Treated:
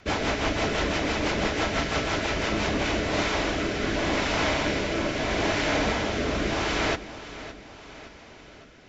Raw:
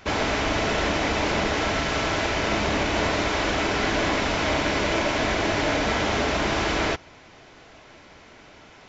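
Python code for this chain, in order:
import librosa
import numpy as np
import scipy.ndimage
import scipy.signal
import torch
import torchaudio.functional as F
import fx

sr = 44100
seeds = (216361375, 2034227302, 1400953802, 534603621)

p1 = fx.rotary_switch(x, sr, hz=6.0, then_hz=0.8, switch_at_s=2.43)
y = p1 + fx.echo_feedback(p1, sr, ms=564, feedback_pct=51, wet_db=-14.5, dry=0)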